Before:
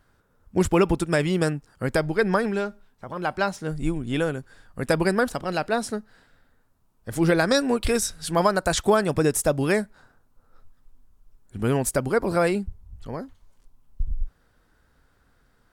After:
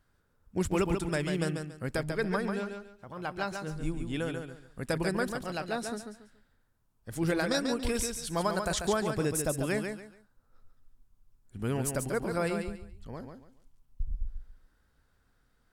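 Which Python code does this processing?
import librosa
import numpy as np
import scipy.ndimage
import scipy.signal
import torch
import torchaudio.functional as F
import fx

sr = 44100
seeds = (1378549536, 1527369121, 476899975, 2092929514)

y = fx.peak_eq(x, sr, hz=680.0, db=-3.5, octaves=2.9)
y = fx.echo_feedback(y, sr, ms=141, feedback_pct=26, wet_db=-6)
y = y * 10.0 ** (-7.0 / 20.0)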